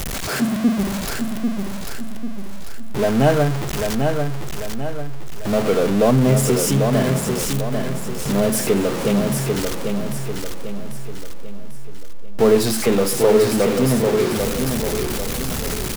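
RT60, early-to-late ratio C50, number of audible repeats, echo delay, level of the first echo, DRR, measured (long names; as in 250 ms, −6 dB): no reverb audible, no reverb audible, 5, 794 ms, −5.0 dB, no reverb audible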